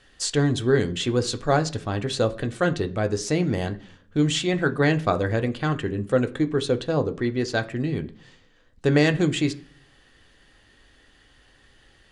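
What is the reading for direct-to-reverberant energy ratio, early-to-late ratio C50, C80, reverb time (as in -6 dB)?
6.5 dB, 18.0 dB, 22.5 dB, 0.45 s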